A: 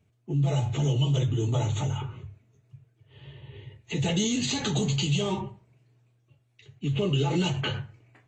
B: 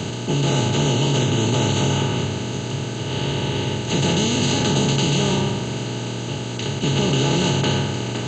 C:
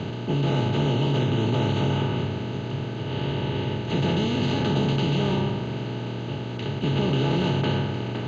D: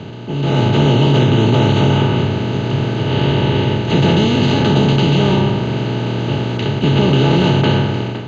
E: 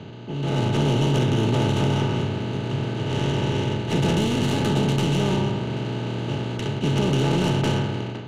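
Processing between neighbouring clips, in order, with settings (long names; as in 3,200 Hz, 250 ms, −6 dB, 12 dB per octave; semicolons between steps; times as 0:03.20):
compressor on every frequency bin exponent 0.2
high-frequency loss of the air 270 metres; level −3 dB
automatic gain control gain up to 13.5 dB
stylus tracing distortion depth 0.11 ms; level −8.5 dB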